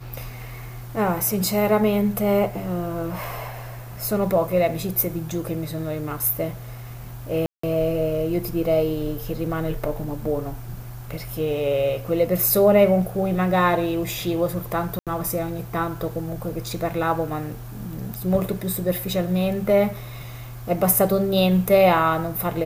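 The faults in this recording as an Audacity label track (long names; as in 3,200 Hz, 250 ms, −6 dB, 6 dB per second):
3.240000	3.240000	click
7.460000	7.630000	drop-out 174 ms
14.990000	15.070000	drop-out 77 ms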